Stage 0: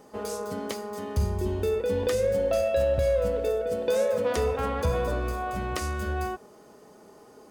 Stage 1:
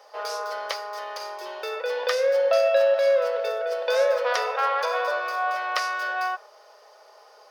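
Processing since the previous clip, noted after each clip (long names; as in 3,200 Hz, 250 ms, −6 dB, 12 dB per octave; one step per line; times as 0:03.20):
dynamic equaliser 1,400 Hz, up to +6 dB, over −44 dBFS, Q 1.1
Chebyshev high-pass filter 550 Hz, order 4
high shelf with overshoot 6,300 Hz −6.5 dB, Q 3
level +4.5 dB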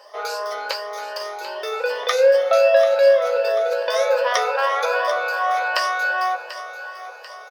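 rippled gain that drifts along the octave scale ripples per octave 1.3, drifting +2.6 Hz, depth 11 dB
double-tracking delay 15 ms −12 dB
echo with a time of its own for lows and highs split 520 Hz, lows 253 ms, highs 740 ms, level −12.5 dB
level +3 dB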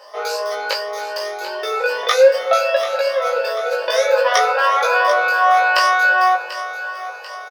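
double-tracking delay 19 ms −2 dB
level +2.5 dB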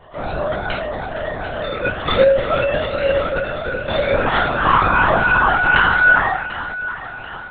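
on a send: flutter between parallel walls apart 5 metres, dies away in 0.39 s
on the sum: linear-prediction vocoder at 8 kHz whisper
level −2.5 dB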